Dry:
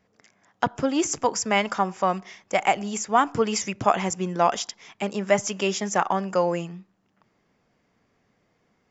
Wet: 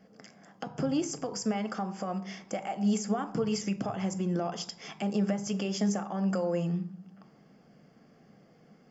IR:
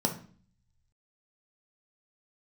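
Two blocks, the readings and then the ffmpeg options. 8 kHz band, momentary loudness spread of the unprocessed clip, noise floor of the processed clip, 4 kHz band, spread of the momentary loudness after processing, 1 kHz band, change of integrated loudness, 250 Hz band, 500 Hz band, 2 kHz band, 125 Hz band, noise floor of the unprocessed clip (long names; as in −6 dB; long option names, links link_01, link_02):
can't be measured, 9 LU, −60 dBFS, −8.5 dB, 9 LU, −14.5 dB, −7.5 dB, −0.5 dB, −9.0 dB, −15.0 dB, +0.5 dB, −69 dBFS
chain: -filter_complex "[0:a]acompressor=threshold=-34dB:ratio=4,alimiter=level_in=5.5dB:limit=-24dB:level=0:latency=1:release=165,volume=-5.5dB,asplit=2[link_01][link_02];[1:a]atrim=start_sample=2205,asetrate=38808,aresample=44100[link_03];[link_02][link_03]afir=irnorm=-1:irlink=0,volume=-7.5dB[link_04];[link_01][link_04]amix=inputs=2:normalize=0"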